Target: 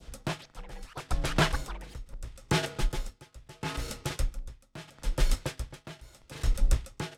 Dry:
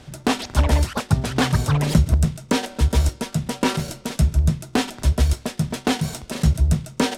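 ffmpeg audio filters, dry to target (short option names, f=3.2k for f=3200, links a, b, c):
-af "adynamicequalizer=threshold=0.0126:dfrequency=1900:dqfactor=0.72:tfrequency=1900:tqfactor=0.72:attack=5:release=100:ratio=0.375:range=2:mode=boostabove:tftype=bell,afreqshift=-100,aeval=exprs='val(0)*pow(10,-21*(0.5-0.5*cos(2*PI*0.75*n/s))/20)':c=same,volume=-5dB"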